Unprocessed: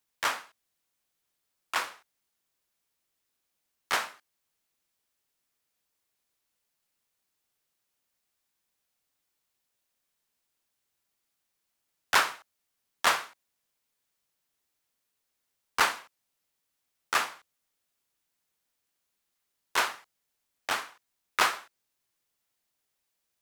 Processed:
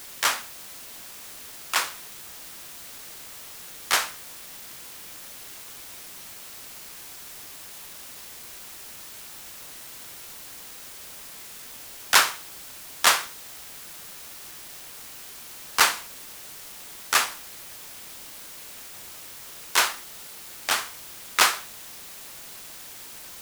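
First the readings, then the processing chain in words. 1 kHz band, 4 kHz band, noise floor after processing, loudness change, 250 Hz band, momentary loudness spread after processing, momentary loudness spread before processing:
+3.5 dB, +8.5 dB, −43 dBFS, 0.0 dB, +4.0 dB, 18 LU, 15 LU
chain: high-shelf EQ 3,400 Hz +11 dB
in parallel at −4 dB: bit-depth reduction 6 bits, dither triangular
on the sum: level −2 dB

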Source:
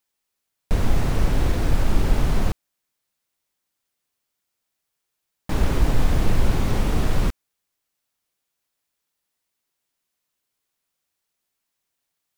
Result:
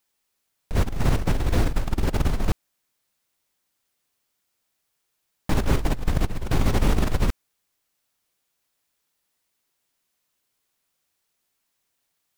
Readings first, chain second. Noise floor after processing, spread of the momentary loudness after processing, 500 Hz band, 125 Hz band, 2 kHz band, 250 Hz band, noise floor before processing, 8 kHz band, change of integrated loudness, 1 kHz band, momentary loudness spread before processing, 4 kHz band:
−76 dBFS, 6 LU, −0.5 dB, −1.0 dB, −0.5 dB, −0.5 dB, −80 dBFS, −0.5 dB, −1.5 dB, −0.5 dB, 6 LU, −0.5 dB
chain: compressor whose output falls as the input rises −20 dBFS, ratio −0.5

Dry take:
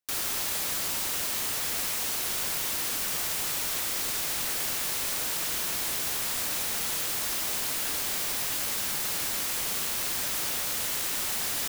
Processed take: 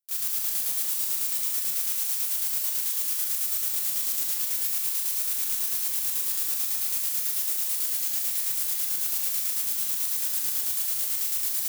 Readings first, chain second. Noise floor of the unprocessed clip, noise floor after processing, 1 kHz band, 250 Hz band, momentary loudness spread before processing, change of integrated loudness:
−31 dBFS, −29 dBFS, −11.5 dB, below −10 dB, 0 LU, +3.0 dB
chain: square-wave tremolo 9.1 Hz, depth 65%, duty 50%
first-order pre-emphasis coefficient 0.8
four-comb reverb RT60 1.6 s, combs from 30 ms, DRR −0.5 dB

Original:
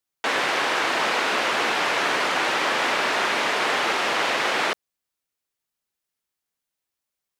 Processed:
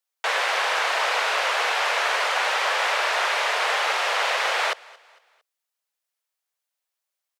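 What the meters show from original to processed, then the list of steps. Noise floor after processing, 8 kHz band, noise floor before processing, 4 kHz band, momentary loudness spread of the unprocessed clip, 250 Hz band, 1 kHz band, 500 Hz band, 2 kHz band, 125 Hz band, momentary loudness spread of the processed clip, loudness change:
−84 dBFS, 0.0 dB, −85 dBFS, 0.0 dB, 1 LU, below −15 dB, 0.0 dB, −1.5 dB, 0.0 dB, below −40 dB, 1 LU, 0.0 dB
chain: Butterworth high-pass 480 Hz 36 dB per octave
on a send: repeating echo 227 ms, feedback 41%, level −23.5 dB

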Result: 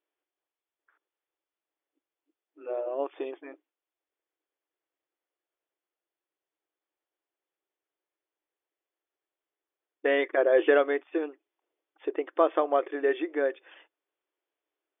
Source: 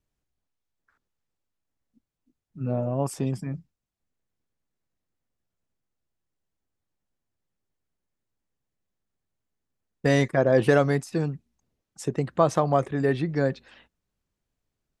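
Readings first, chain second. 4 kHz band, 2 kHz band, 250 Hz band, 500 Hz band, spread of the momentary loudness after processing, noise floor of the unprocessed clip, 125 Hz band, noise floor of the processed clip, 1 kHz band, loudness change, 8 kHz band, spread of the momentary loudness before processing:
−4.0 dB, −0.5 dB, −7.5 dB, −1.0 dB, 16 LU, −85 dBFS, below −40 dB, below −85 dBFS, −3.0 dB, −2.5 dB, below −35 dB, 14 LU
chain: dynamic equaliser 870 Hz, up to −5 dB, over −37 dBFS, Q 1.9
linear-phase brick-wall band-pass 290–3,600 Hz

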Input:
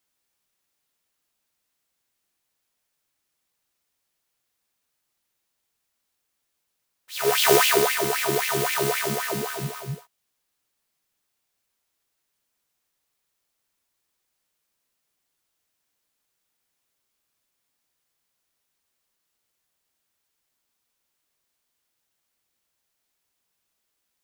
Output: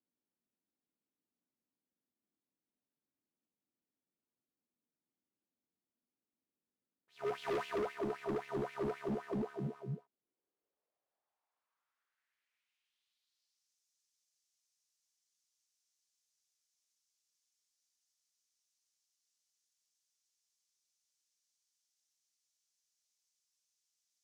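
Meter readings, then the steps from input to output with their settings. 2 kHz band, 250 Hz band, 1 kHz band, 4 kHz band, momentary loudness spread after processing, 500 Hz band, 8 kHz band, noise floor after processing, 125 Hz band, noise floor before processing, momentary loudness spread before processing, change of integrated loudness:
−22.5 dB, −8.5 dB, −17.5 dB, −28.5 dB, 5 LU, −14.0 dB, below −35 dB, below −85 dBFS, −11.0 dB, −78 dBFS, 18 LU, −18.0 dB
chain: band-pass filter sweep 250 Hz → 6,000 Hz, 0:09.97–0:13.73
gain into a clipping stage and back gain 34 dB
level +1 dB

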